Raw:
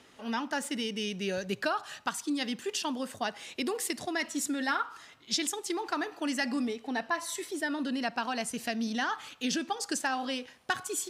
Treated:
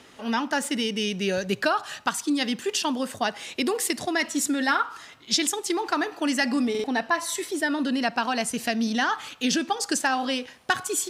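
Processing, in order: buffer glitch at 6.70 s, samples 2048, times 2; trim +7 dB

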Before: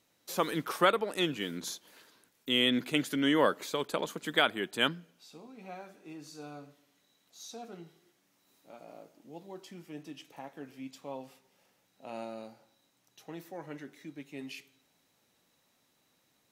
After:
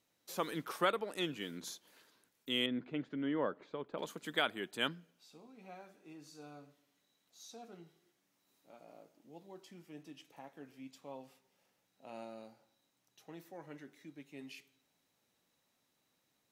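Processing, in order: 2.66–3.98 s: tape spacing loss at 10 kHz 42 dB; trim -7 dB

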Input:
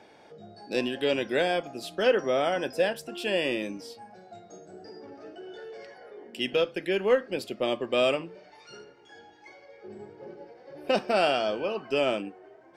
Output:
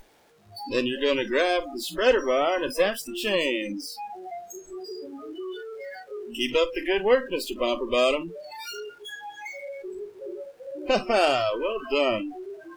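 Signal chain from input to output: jump at every zero crossing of -26 dBFS; Chebyshev shaper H 3 -21 dB, 4 -43 dB, 7 -32 dB, 8 -22 dB, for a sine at -10 dBFS; spectral noise reduction 26 dB; trim +2.5 dB

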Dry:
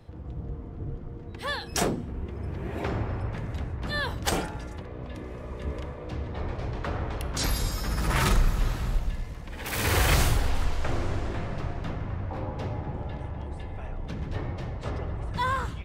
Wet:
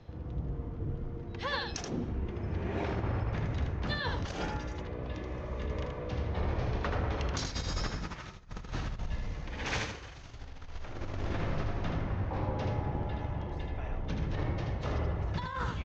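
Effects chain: elliptic low-pass 6.5 kHz, stop band 40 dB; compressor with a negative ratio -31 dBFS, ratio -0.5; delay 79 ms -5 dB; trim -3 dB

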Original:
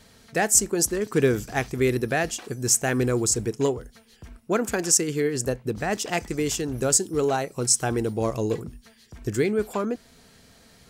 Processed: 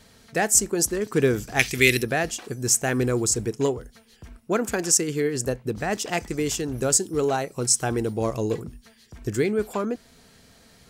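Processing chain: 1.59–2.03 s: resonant high shelf 1.6 kHz +13 dB, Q 1.5

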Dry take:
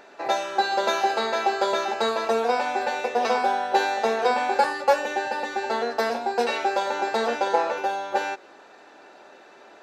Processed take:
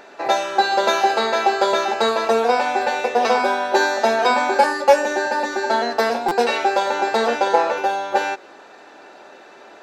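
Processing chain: 3.39–5.93 s: comb 3.2 ms, depth 62%; buffer glitch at 6.28 s, samples 256, times 5; trim +5.5 dB

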